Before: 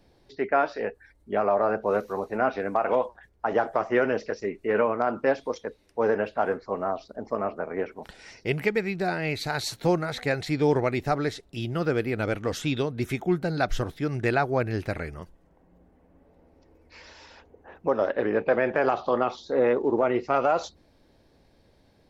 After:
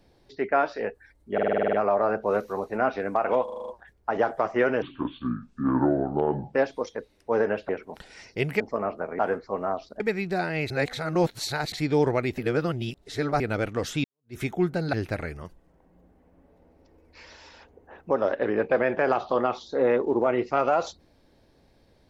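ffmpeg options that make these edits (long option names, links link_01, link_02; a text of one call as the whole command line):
ffmpeg -i in.wav -filter_complex "[0:a]asplit=27[link_01][link_02][link_03][link_04][link_05][link_06][link_07][link_08][link_09][link_10][link_11][link_12][link_13][link_14][link_15][link_16][link_17][link_18][link_19][link_20][link_21][link_22][link_23][link_24][link_25][link_26][link_27];[link_01]atrim=end=1.382[link_28];[link_02]atrim=start=1.328:end=1.382[link_29];[link_03]atrim=start=1.328:end=1.382[link_30];[link_04]atrim=start=1.328:end=1.382[link_31];[link_05]atrim=start=1.328:end=1.382[link_32];[link_06]atrim=start=1.328:end=1.382[link_33];[link_07]atrim=start=1.328:end=1.382[link_34];[link_08]atrim=start=1.328:end=1.382[link_35];[link_09]atrim=start=1.328:end=3.082[link_36];[link_10]atrim=start=3.038:end=3.082[link_37];[link_11]atrim=start=3.038:end=3.082[link_38];[link_12]atrim=start=3.038:end=3.082[link_39];[link_13]atrim=start=3.038:end=3.082[link_40];[link_14]atrim=start=3.038:end=3.082[link_41];[link_15]atrim=start=3.038:end=4.184[link_42];[link_16]atrim=start=4.18:end=5.23,asetpts=PTS-STARTPTS,asetrate=26901,aresample=44100[link_43];[link_17]atrim=start=5.226:end=6.382[link_44];[link_18]atrim=start=7.778:end=8.692[link_45];[link_19]atrim=start=7.188:end=7.782[link_46];[link_20]atrim=start=6.378:end=7.192[link_47];[link_21]atrim=start=8.688:end=9.392[link_48];[link_22]atrim=start=9.388:end=10.412,asetpts=PTS-STARTPTS,areverse[link_49];[link_23]atrim=start=10.408:end=11.072[link_50];[link_24]atrim=start=11.068:end=12.092,asetpts=PTS-STARTPTS,areverse[link_51];[link_25]atrim=start=12.088:end=12.73,asetpts=PTS-STARTPTS,afade=type=out:start_time=0.638:duration=0.004:curve=hsin[link_52];[link_26]atrim=start=12.73:end=13.622,asetpts=PTS-STARTPTS,afade=type=in:duration=0.33:curve=exp[link_53];[link_27]atrim=start=14.698[link_54];[link_28][link_29]acrossfade=duration=0.004:curve1=hsin:curve2=hsin[link_55];[link_55][link_30]acrossfade=duration=0.004:curve1=hsin:curve2=hsin[link_56];[link_56][link_31]acrossfade=duration=0.004:curve1=hsin:curve2=hsin[link_57];[link_57][link_32]acrossfade=duration=0.004:curve1=hsin:curve2=hsin[link_58];[link_58][link_33]acrossfade=duration=0.004:curve1=hsin:curve2=hsin[link_59];[link_59][link_34]acrossfade=duration=0.004:curve1=hsin:curve2=hsin[link_60];[link_60][link_35]acrossfade=duration=0.004:curve1=hsin:curve2=hsin[link_61];[link_61][link_36]acrossfade=duration=0.004:curve1=hsin:curve2=hsin[link_62];[link_62][link_37]acrossfade=duration=0.004:curve1=hsin:curve2=hsin[link_63];[link_63][link_38]acrossfade=duration=0.004:curve1=hsin:curve2=hsin[link_64];[link_64][link_39]acrossfade=duration=0.004:curve1=hsin:curve2=hsin[link_65];[link_65][link_40]acrossfade=duration=0.004:curve1=hsin:curve2=hsin[link_66];[link_66][link_41]acrossfade=duration=0.004:curve1=hsin:curve2=hsin[link_67];[link_67][link_42]acrossfade=duration=0.004:curve1=hsin:curve2=hsin[link_68];[link_68][link_43]acrossfade=duration=0.004:curve1=hsin:curve2=hsin[link_69];[link_69][link_44]acrossfade=duration=0.004:curve1=hsin:curve2=hsin[link_70];[link_70][link_45]acrossfade=duration=0.004:curve1=hsin:curve2=hsin[link_71];[link_71][link_46]acrossfade=duration=0.004:curve1=hsin:curve2=hsin[link_72];[link_72][link_47]acrossfade=duration=0.004:curve1=hsin:curve2=hsin[link_73];[link_73][link_48]acrossfade=duration=0.004:curve1=hsin:curve2=hsin[link_74];[link_74][link_49]acrossfade=duration=0.004:curve1=hsin:curve2=hsin[link_75];[link_75][link_50]acrossfade=duration=0.004:curve1=hsin:curve2=hsin[link_76];[link_76][link_51]acrossfade=duration=0.004:curve1=hsin:curve2=hsin[link_77];[link_52][link_53]concat=n=2:v=0:a=1[link_78];[link_77][link_78]acrossfade=duration=0.004:curve1=hsin:curve2=hsin[link_79];[link_79][link_54]acrossfade=duration=0.004:curve1=hsin:curve2=hsin" out.wav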